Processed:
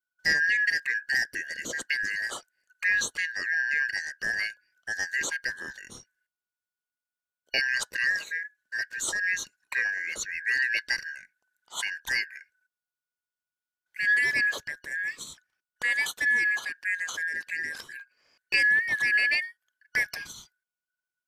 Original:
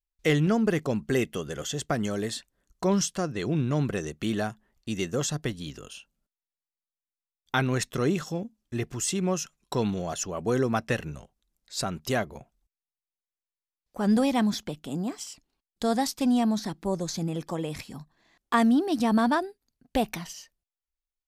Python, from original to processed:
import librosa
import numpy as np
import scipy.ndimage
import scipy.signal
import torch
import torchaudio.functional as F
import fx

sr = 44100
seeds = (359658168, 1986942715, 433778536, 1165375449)

y = fx.band_shuffle(x, sr, order='3142')
y = F.gain(torch.from_numpy(y), -1.5).numpy()